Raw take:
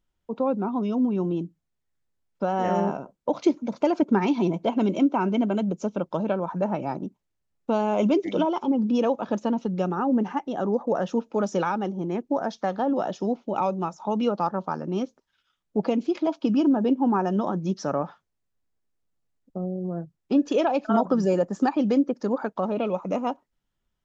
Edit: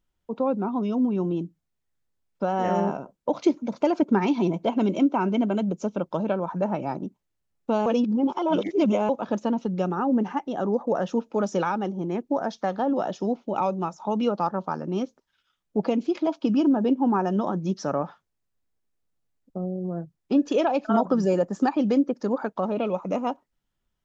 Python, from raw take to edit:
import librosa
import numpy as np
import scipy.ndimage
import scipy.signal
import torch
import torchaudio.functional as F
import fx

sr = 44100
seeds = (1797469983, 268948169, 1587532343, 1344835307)

y = fx.edit(x, sr, fx.reverse_span(start_s=7.86, length_s=1.23), tone=tone)